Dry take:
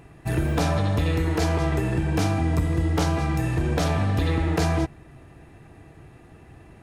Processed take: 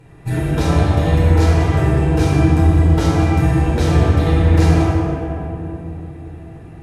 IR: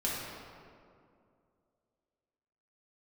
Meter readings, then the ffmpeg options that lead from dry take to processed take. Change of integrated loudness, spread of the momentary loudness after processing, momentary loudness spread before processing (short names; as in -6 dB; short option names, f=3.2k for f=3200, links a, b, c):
+8.5 dB, 15 LU, 2 LU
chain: -filter_complex "[1:a]atrim=start_sample=2205,asetrate=26019,aresample=44100[a];[0:a][a]afir=irnorm=-1:irlink=0,volume=-4dB"